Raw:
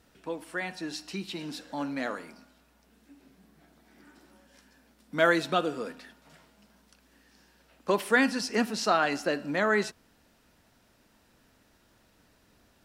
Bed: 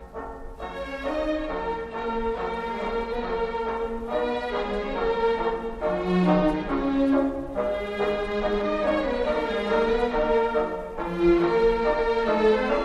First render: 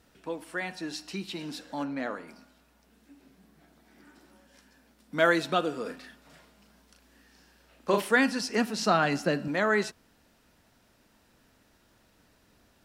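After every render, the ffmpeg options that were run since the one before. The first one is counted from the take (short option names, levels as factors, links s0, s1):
-filter_complex "[0:a]asplit=3[s0][s1][s2];[s0]afade=t=out:st=1.83:d=0.02[s3];[s1]highshelf=f=3500:g=-10.5,afade=t=in:st=1.83:d=0.02,afade=t=out:st=2.27:d=0.02[s4];[s2]afade=t=in:st=2.27:d=0.02[s5];[s3][s4][s5]amix=inputs=3:normalize=0,asettb=1/sr,asplit=3[s6][s7][s8];[s6]atrim=end=5.824[s9];[s7]atrim=start=5.82:end=8.08,asetpts=PTS-STARTPTS,afade=t=in:d=0.004:c=qsin,afade=t=out:st=2.256:d=0.004:c=qsin,asplit=2[s10][s11];[s11]adelay=36,volume=0.596[s12];[s10][s12]amix=inputs=2:normalize=0,atrim=end_sample=99666[s13];[s8]atrim=start=8.076[s14];[s9][s13]acrossfade=d=0.004:c1=hsin:c2=qsin[s15];[s15][s14]acrossfade=d=0.004:c1=qsin:c2=hsin,asettb=1/sr,asplit=3[s16][s17][s18];[s16]atrim=end=8.794[s19];[s17]atrim=start=8.79:end=9.48,asetpts=PTS-STARTPTS,afade=t=in:d=0.004:c=qsin,afade=t=out:st=0.686:d=0.004:c=qsin,equalizer=f=160:w=1.5:g=12[s20];[s18]atrim=start=9.476[s21];[s19][s20]acrossfade=d=0.004:c1=hsin:c2=qsin[s22];[s22][s21]acrossfade=d=0.004:c1=qsin:c2=hsin"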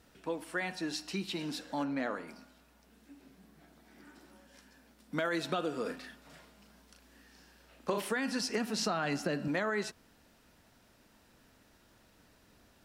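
-af "alimiter=limit=0.133:level=0:latency=1:release=33,acompressor=threshold=0.0355:ratio=6"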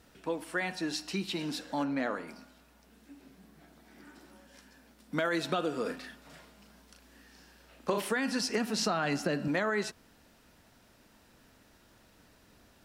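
-af "volume=1.33"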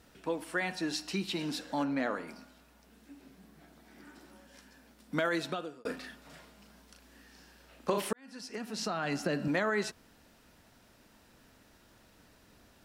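-filter_complex "[0:a]asplit=3[s0][s1][s2];[s0]atrim=end=5.85,asetpts=PTS-STARTPTS,afade=t=out:st=5.29:d=0.56[s3];[s1]atrim=start=5.85:end=8.13,asetpts=PTS-STARTPTS,afade=t=in:d=0.004:c=hsin,afade=t=out:st=2.276:d=0.004:c=hsin[s4];[s2]atrim=start=8.13,asetpts=PTS-STARTPTS,afade=t=in:d=1.31[s5];[s3][s4][s5]concat=n=3:v=0:a=1"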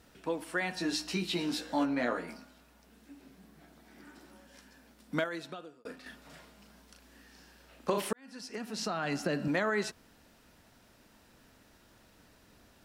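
-filter_complex "[0:a]asettb=1/sr,asplit=3[s0][s1][s2];[s0]atrim=end=0.754[s3];[s1]atrim=start=0.75:end=2.37,asetpts=PTS-STARTPTS,afade=t=in:d=0.004:c=qsin,afade=t=out:st=1.616:d=0.004:c=qsin,asplit=2[s4][s5];[s5]adelay=17,volume=0.75[s6];[s4][s6]amix=inputs=2:normalize=0,atrim=end_sample=71442[s7];[s2]atrim=start=2.366[s8];[s3][s7]acrossfade=d=0.004:c1=hsin:c2=qsin[s9];[s9][s8]acrossfade=d=0.004:c1=qsin:c2=hsin,asplit=3[s10][s11][s12];[s10]atrim=end=5.242[s13];[s11]atrim=start=5.238:end=6.062,asetpts=PTS-STARTPTS,volume=0.422[s14];[s12]atrim=start=6.058[s15];[s13][s14]acrossfade=d=0.004:c1=hsin:c2=hsin[s16];[s16][s15]acrossfade=d=0.004:c1=hsin:c2=hsin"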